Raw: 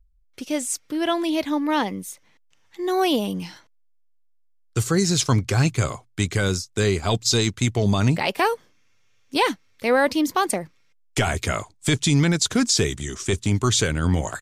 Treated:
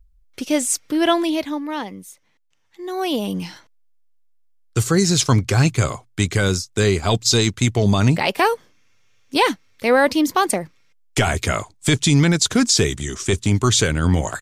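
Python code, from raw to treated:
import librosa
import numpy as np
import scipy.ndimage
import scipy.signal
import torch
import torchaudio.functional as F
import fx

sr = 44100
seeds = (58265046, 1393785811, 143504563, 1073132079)

y = fx.gain(x, sr, db=fx.line((1.11, 6.0), (1.7, -5.0), (2.93, -5.0), (3.36, 3.5)))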